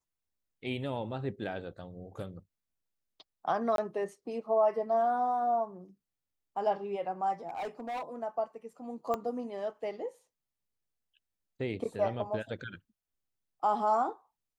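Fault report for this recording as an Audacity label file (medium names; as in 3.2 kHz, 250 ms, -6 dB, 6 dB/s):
3.760000	3.780000	dropout 22 ms
7.470000	8.160000	clipped -33.5 dBFS
9.140000	9.140000	pop -20 dBFS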